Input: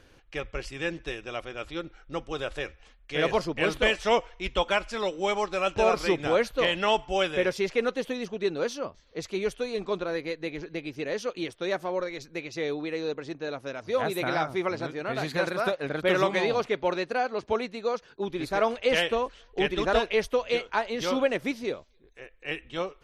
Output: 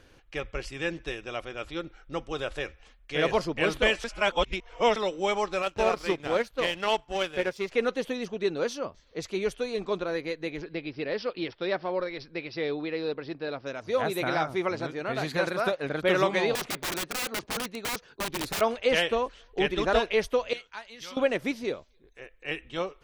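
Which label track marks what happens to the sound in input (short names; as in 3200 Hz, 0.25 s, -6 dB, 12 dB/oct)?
4.040000	4.960000	reverse
5.620000	7.720000	power-law curve exponent 1.4
10.620000	13.660000	careless resampling rate divided by 4×, down none, up filtered
16.550000	18.610000	wrapped overs gain 26 dB
20.530000	21.170000	passive tone stack bass-middle-treble 5-5-5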